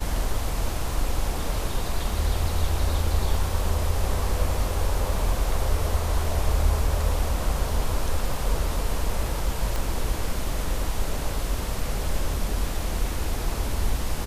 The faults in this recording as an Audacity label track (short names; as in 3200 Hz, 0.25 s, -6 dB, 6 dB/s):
9.760000	9.760000	pop